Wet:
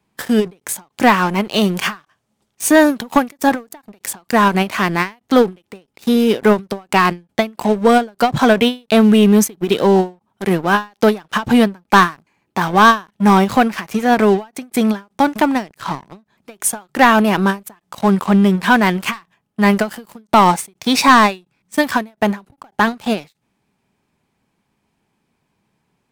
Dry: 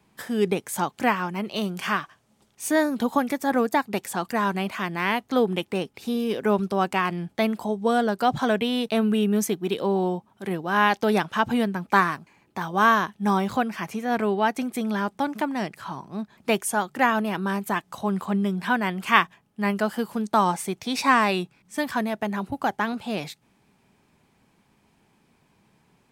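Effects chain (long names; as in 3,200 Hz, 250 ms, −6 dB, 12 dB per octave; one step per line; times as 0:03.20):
leveller curve on the samples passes 3
every ending faded ahead of time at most 250 dB per second
level +1 dB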